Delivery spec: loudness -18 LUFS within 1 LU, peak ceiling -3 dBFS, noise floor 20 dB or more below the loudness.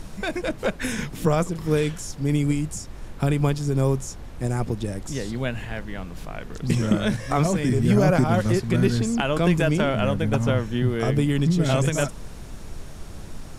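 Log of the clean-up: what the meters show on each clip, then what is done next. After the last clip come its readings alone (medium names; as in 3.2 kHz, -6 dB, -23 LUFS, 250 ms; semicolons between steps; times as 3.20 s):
noise floor -38 dBFS; noise floor target -44 dBFS; loudness -23.5 LUFS; peak level -6.5 dBFS; loudness target -18.0 LUFS
-> noise print and reduce 6 dB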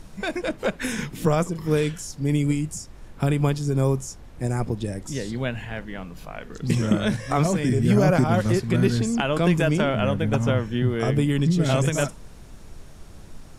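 noise floor -44 dBFS; loudness -23.5 LUFS; peak level -6.5 dBFS; loudness target -18.0 LUFS
-> trim +5.5 dB; peak limiter -3 dBFS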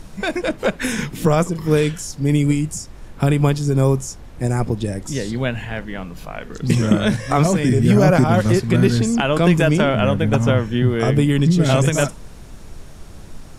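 loudness -18.0 LUFS; peak level -3.0 dBFS; noise floor -38 dBFS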